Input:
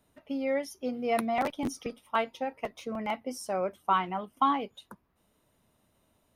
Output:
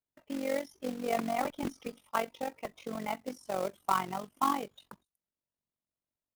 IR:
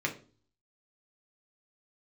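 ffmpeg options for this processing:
-filter_complex "[0:a]agate=range=0.0562:threshold=0.00158:ratio=16:detection=peak,acrossover=split=3200[s0][s1];[s1]acompressor=threshold=0.00224:ratio=4:attack=1:release=60[s2];[s0][s2]amix=inputs=2:normalize=0,tremolo=f=46:d=0.788,acrossover=split=5500[s3][s4];[s3]acrusher=bits=3:mode=log:mix=0:aa=0.000001[s5];[s4]aecho=1:1:240:0.168[s6];[s5][s6]amix=inputs=2:normalize=0"

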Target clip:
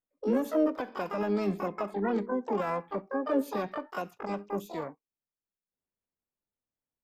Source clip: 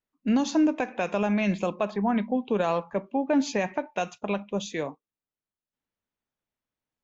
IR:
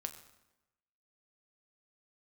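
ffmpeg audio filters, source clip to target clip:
-filter_complex "[0:a]asplit=3[s0][s1][s2];[s1]asetrate=66075,aresample=44100,atempo=0.66742,volume=0.282[s3];[s2]asetrate=88200,aresample=44100,atempo=0.5,volume=0.891[s4];[s0][s3][s4]amix=inputs=3:normalize=0,equalizer=f=5300:w=0.36:g=-13.5,volume=0.501"

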